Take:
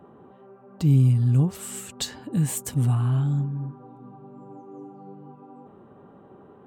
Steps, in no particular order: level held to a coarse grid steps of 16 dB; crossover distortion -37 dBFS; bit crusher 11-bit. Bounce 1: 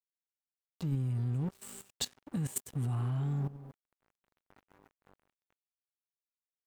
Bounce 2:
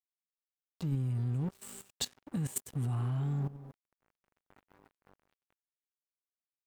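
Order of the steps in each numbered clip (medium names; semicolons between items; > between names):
crossover distortion > bit crusher > level held to a coarse grid; bit crusher > crossover distortion > level held to a coarse grid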